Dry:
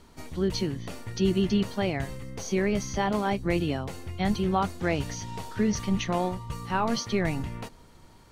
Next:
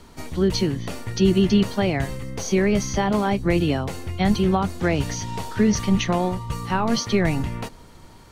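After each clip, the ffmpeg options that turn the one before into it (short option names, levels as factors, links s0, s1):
-filter_complex "[0:a]acrossover=split=330[s0][s1];[s1]acompressor=threshold=0.0447:ratio=6[s2];[s0][s2]amix=inputs=2:normalize=0,volume=2.24"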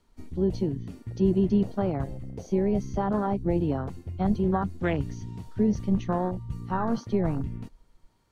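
-af "afwtdn=0.0562,volume=0.562"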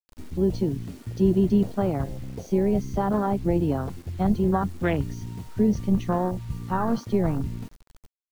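-af "acrusher=bits=8:mix=0:aa=0.000001,volume=1.33"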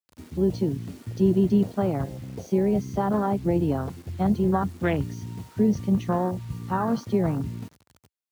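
-af "highpass=f=75:w=0.5412,highpass=f=75:w=1.3066"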